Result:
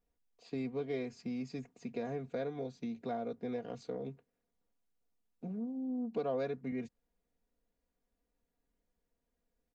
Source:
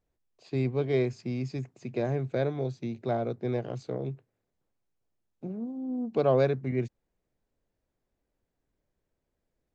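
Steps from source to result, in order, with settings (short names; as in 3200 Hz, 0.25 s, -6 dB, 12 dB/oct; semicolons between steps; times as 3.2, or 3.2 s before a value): comb 4.2 ms, depth 71%; compressor 2:1, threshold -33 dBFS, peak gain reduction 8.5 dB; gain -5 dB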